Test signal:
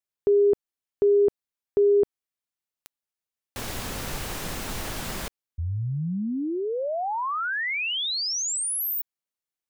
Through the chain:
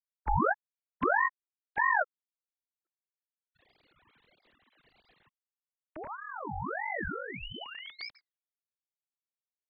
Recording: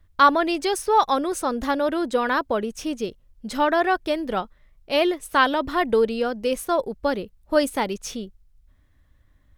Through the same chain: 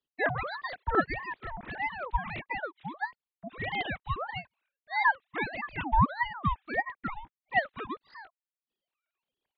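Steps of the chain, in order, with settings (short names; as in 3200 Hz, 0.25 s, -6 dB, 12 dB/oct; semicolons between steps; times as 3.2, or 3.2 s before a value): sine-wave speech; ring modulator with a swept carrier 950 Hz, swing 55%, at 1.6 Hz; gain -6.5 dB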